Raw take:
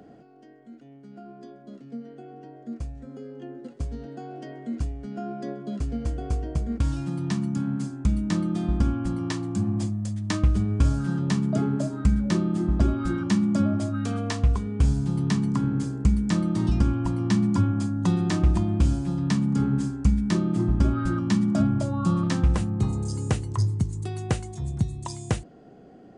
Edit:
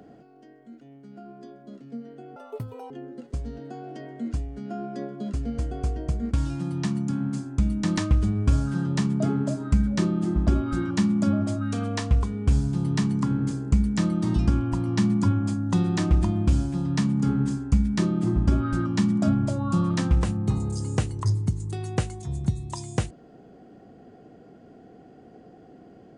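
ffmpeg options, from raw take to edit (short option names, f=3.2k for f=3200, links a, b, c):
-filter_complex "[0:a]asplit=4[a][b][c][d];[a]atrim=end=2.364[e];[b]atrim=start=2.36:end=3.37,asetpts=PTS-STARTPTS,asetrate=82026,aresample=44100[f];[c]atrim=start=3.366:end=8.442[g];[d]atrim=start=10.298[h];[e][f]acrossfade=d=0.004:c1=hsin:c2=hsin[i];[i][g]acrossfade=d=0.004:c1=hsin:c2=hsin[j];[j][h]acrossfade=d=0.004:c1=hsin:c2=hsin"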